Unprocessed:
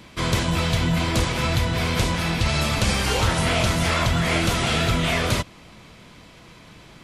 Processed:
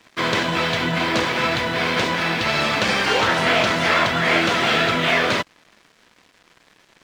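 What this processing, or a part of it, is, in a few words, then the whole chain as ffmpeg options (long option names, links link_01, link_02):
pocket radio on a weak battery: -af "highpass=260,lowpass=4300,aeval=exprs='sgn(val(0))*max(abs(val(0))-0.00473,0)':channel_layout=same,equalizer=frequency=1700:width_type=o:width=0.45:gain=4.5,volume=5.5dB"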